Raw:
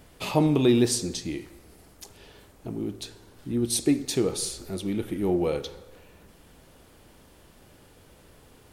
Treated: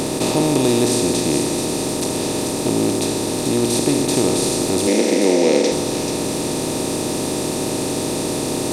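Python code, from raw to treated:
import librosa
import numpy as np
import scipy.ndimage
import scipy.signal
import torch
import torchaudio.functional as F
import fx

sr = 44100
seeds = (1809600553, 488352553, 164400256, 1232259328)

y = fx.bin_compress(x, sr, power=0.2)
y = fx.cabinet(y, sr, low_hz=200.0, low_slope=24, high_hz=7900.0, hz=(210.0, 510.0, 1200.0, 2100.0, 5600.0), db=(5, 9, -5, 10, 5), at=(4.87, 5.72))
y = fx.echo_wet_highpass(y, sr, ms=436, feedback_pct=47, hz=3700.0, wet_db=-5)
y = y * 10.0 ** (-1.0 / 20.0)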